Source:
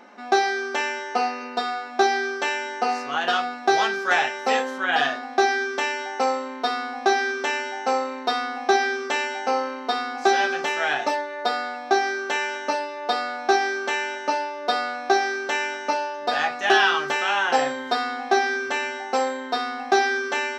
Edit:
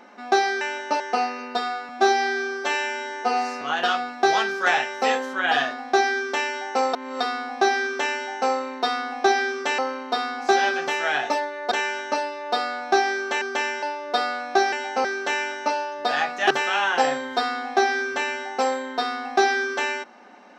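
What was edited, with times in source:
0.61–1.02 s: swap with 13.98–14.37 s
1.91–3.06 s: stretch 1.5×
6.38–6.65 s: reverse
9.23–9.55 s: move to 15.27 s
11.48–12.28 s: delete
16.73–17.05 s: delete

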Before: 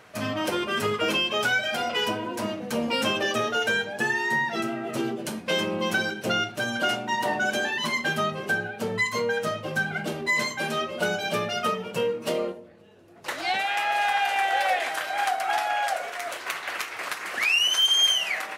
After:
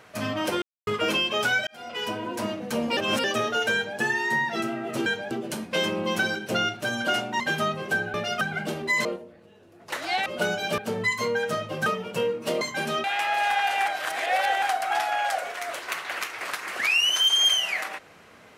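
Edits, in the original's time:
0.62–0.87 s: mute
1.67–2.29 s: fade in
2.97–3.24 s: reverse
3.74–3.99 s: copy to 5.06 s
7.15–7.98 s: delete
8.72–9.80 s: swap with 11.39–11.66 s
10.44–10.87 s: swap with 12.41–13.62 s
14.44–15.20 s: reverse

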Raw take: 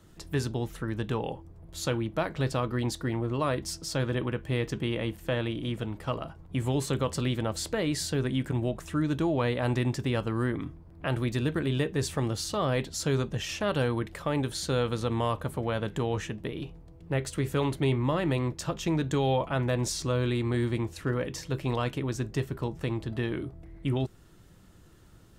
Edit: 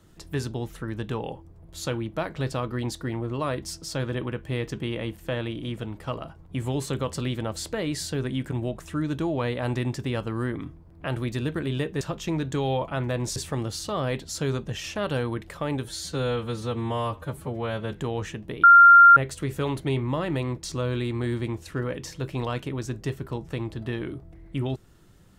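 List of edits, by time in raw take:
14.49–15.88 s: stretch 1.5×
16.59–17.12 s: bleep 1.39 kHz -8 dBFS
18.60–19.95 s: move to 12.01 s

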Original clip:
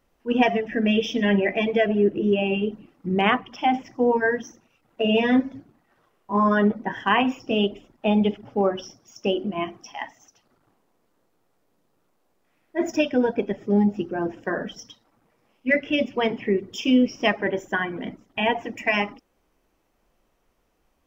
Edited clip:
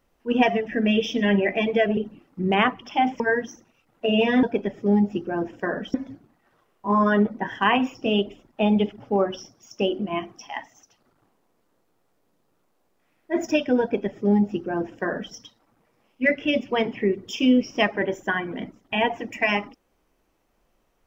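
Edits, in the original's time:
1.97–2.64 s: delete
3.87–4.16 s: delete
13.27–14.78 s: copy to 5.39 s

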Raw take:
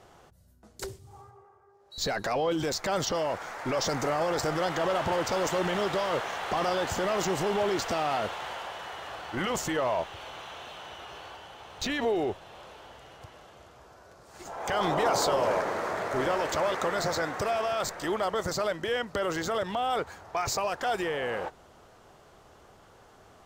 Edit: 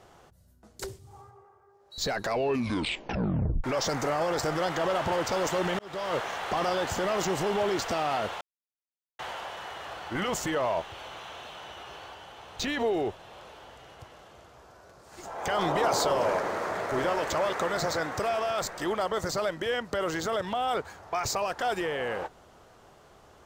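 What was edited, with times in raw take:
2.26 s: tape stop 1.38 s
5.79–6.16 s: fade in
8.41 s: insert silence 0.78 s

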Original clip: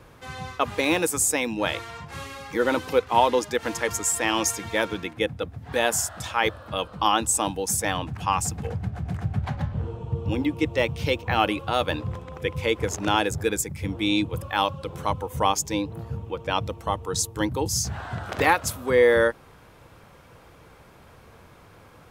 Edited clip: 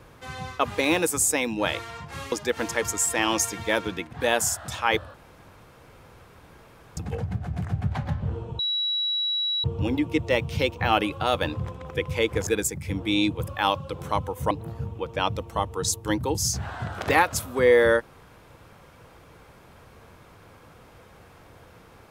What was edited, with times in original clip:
2.32–3.38 s: delete
5.19–5.65 s: delete
6.66–8.49 s: room tone
10.11 s: add tone 3.9 kHz -23 dBFS 1.05 s
12.94–13.41 s: delete
15.45–15.82 s: delete

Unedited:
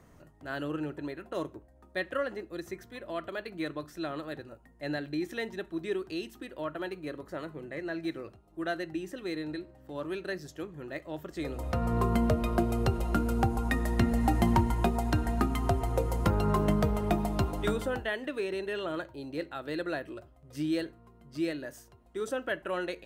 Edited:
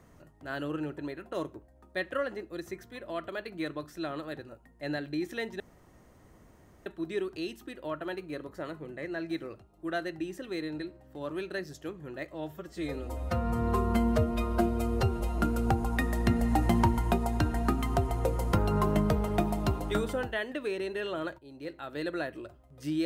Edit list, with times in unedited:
5.60 s: insert room tone 1.26 s
11.08–13.11 s: stretch 1.5×
19.11–19.72 s: fade in, from -12.5 dB

